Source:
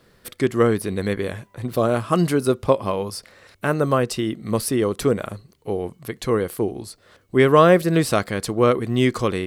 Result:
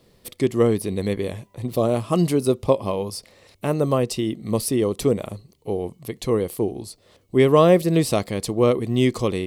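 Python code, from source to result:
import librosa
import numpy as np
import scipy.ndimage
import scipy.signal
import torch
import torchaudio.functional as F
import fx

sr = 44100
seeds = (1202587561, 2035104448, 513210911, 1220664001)

y = fx.peak_eq(x, sr, hz=1500.0, db=-14.5, octaves=0.59)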